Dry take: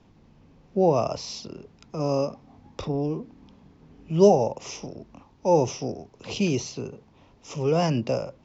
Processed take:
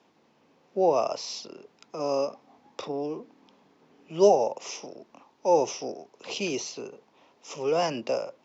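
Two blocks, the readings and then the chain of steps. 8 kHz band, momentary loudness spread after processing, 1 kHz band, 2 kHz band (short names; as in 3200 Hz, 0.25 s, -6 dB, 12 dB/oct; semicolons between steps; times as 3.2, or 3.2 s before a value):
n/a, 19 LU, 0.0 dB, 0.0 dB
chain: HPF 390 Hz 12 dB/oct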